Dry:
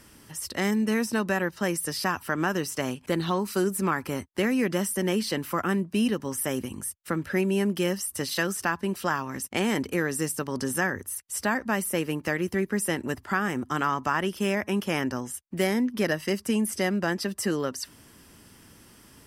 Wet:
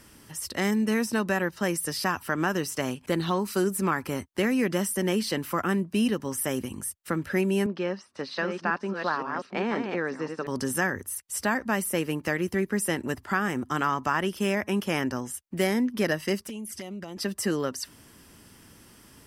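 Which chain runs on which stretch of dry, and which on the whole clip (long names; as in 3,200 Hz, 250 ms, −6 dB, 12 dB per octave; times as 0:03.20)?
0:07.66–0:10.47: delay that plays each chunk backwards 523 ms, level −5 dB + loudspeaker in its box 240–4,000 Hz, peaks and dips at 330 Hz −4 dB, 2,000 Hz −5 dB, 3,100 Hz −10 dB
0:16.41–0:17.17: parametric band 230 Hz −3.5 dB 3 octaves + flanger swept by the level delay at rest 8.1 ms, full sweep at −25 dBFS + downward compressor 12 to 1, threshold −33 dBFS
whole clip: no processing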